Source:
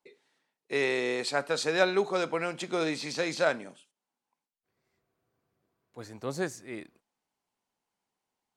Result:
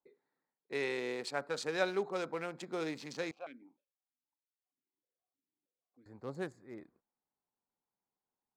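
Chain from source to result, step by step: local Wiener filter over 15 samples; band-stop 650 Hz, Q 14; 3.31–6.06 s: stepped vowel filter 6.4 Hz; trim -7.5 dB

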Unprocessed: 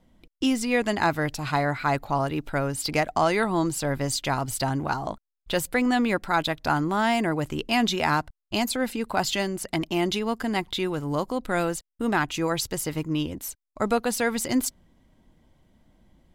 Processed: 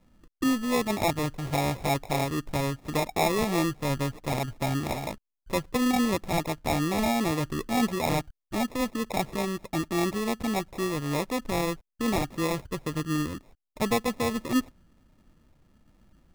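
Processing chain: tape spacing loss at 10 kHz 38 dB; sample-and-hold 29×

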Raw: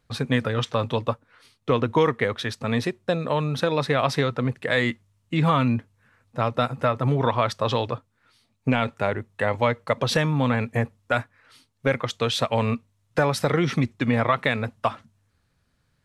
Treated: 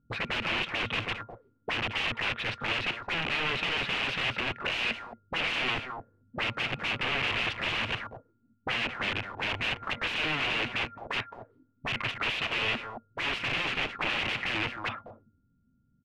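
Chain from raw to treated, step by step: whistle 1.4 kHz -48 dBFS; integer overflow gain 25 dB; delay 219 ms -10 dB; touch-sensitive low-pass 200–2700 Hz up, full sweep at -28.5 dBFS; trim -3.5 dB

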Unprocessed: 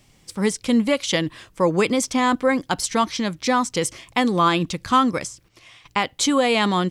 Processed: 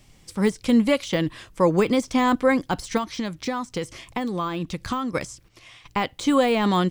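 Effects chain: de-esser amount 70%; bass shelf 60 Hz +8 dB; 2.97–5.15 s: compression 6:1, threshold -24 dBFS, peak gain reduction 10 dB

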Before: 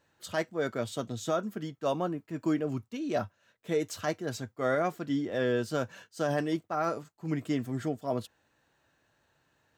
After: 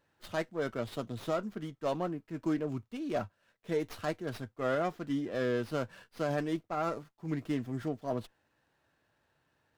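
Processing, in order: sliding maximum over 5 samples; trim -3 dB

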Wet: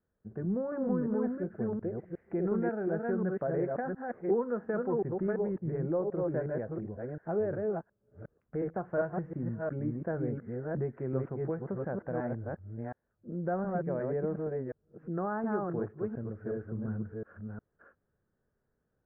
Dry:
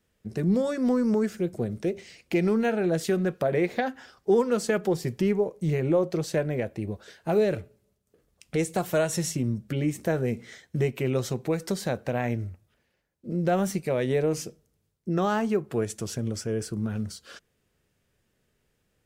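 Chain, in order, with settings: chunks repeated in reverse 359 ms, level -2 dB; elliptic low-pass 1.6 kHz, stop band 60 dB; trim -8 dB

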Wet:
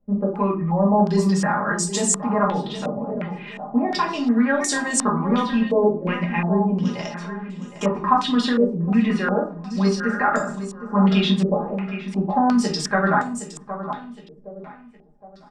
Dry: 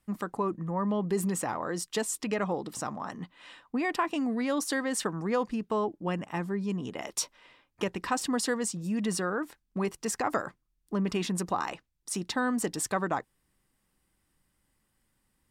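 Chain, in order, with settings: comb 4.9 ms, depth 78%; on a send: feedback delay 765 ms, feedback 37%, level -11.5 dB; on the sum: simulated room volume 280 m³, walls furnished, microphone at 2.2 m; step-sequenced low-pass 2.8 Hz 510–7400 Hz

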